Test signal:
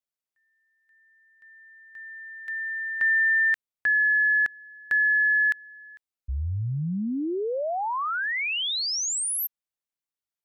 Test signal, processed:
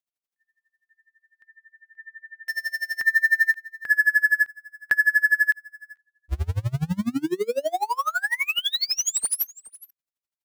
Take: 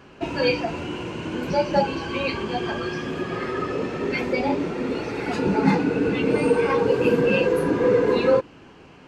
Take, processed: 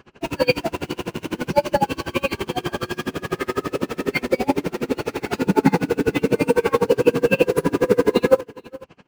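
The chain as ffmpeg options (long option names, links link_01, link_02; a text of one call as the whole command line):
ffmpeg -i in.wav -filter_complex "[0:a]asplit=2[link_01][link_02];[link_02]acrusher=bits=4:mix=0:aa=0.000001,volume=-6dB[link_03];[link_01][link_03]amix=inputs=2:normalize=0,aecho=1:1:436:0.0944,aeval=exprs='val(0)*pow(10,-29*(0.5-0.5*cos(2*PI*12*n/s))/20)':channel_layout=same,volume=4dB" out.wav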